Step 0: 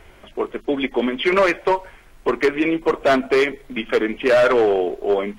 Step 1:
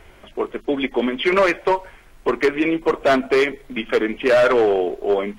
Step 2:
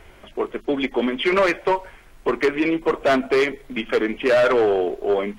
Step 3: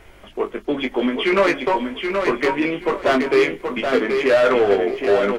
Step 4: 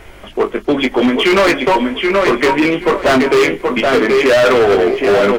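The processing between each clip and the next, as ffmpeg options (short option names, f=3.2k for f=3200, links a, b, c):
-af anull
-af "asoftclip=type=tanh:threshold=-7.5dB,acontrast=33,volume=-5.5dB"
-filter_complex "[0:a]asplit=2[a][b];[b]adelay=20,volume=-6dB[c];[a][c]amix=inputs=2:normalize=0,aecho=1:1:776|1552|2328:0.531|0.127|0.0306"
-af "volume=17dB,asoftclip=hard,volume=-17dB,volume=9dB"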